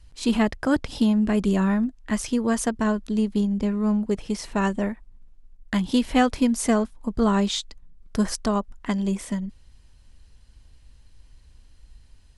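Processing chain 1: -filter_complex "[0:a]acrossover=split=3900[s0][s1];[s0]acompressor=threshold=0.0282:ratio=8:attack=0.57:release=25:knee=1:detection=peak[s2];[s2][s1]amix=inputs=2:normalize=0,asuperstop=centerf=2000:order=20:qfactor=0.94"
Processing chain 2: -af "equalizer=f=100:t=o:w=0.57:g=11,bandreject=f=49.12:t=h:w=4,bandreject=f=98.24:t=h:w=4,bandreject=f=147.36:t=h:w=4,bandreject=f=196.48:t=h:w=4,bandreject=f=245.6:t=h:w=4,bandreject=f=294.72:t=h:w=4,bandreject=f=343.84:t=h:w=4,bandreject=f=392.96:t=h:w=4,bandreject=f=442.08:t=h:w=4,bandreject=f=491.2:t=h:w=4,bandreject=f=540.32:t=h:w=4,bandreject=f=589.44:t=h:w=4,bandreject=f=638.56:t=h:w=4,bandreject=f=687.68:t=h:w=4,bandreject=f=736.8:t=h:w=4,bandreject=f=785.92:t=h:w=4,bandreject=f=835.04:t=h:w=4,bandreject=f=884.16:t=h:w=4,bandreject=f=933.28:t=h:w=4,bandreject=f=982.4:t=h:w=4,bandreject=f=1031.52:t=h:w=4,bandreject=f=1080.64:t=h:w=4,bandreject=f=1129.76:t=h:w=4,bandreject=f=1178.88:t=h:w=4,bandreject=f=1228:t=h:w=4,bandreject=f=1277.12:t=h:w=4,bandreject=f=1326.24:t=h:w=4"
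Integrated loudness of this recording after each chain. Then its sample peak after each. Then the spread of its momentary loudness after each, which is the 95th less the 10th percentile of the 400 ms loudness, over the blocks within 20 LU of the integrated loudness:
-34.5 LUFS, -24.5 LUFS; -11.5 dBFS, -7.5 dBFS; 8 LU, 9 LU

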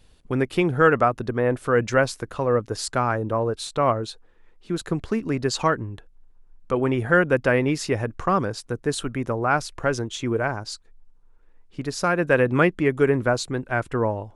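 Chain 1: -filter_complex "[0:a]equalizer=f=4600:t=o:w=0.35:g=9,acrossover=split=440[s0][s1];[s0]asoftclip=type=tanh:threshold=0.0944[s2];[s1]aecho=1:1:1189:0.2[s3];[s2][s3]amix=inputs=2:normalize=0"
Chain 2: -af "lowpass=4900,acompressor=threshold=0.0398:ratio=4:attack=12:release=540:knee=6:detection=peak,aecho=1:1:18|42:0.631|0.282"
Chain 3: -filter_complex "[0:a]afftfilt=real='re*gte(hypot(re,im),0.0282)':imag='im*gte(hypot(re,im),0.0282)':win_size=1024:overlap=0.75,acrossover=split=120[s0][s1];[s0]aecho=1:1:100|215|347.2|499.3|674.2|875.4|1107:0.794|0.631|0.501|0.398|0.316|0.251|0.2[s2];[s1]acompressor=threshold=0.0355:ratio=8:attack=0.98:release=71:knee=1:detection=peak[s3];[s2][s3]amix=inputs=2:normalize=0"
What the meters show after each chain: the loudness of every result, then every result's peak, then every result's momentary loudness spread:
-24.0 LUFS, -31.5 LUFS, -32.5 LUFS; -5.0 dBFS, -15.0 dBFS, -18.0 dBFS; 11 LU, 6 LU, 8 LU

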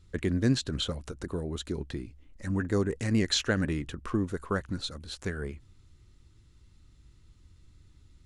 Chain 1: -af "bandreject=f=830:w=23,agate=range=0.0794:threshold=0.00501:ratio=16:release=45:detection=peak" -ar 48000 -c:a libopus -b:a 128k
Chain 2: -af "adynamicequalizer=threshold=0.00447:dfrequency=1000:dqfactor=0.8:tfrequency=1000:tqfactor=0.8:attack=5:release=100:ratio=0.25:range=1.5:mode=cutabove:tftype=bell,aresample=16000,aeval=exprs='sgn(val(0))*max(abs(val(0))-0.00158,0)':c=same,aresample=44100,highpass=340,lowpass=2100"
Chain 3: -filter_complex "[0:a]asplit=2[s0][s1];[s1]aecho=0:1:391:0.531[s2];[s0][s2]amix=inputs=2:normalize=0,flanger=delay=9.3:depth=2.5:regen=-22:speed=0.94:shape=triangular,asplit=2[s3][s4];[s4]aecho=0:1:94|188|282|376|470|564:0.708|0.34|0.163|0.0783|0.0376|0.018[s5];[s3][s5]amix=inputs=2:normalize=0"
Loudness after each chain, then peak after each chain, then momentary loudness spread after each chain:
-31.0 LUFS, -38.0 LUFS, -31.5 LUFS; -12.0 dBFS, -16.5 dBFS, -16.0 dBFS; 13 LU, 12 LU, 13 LU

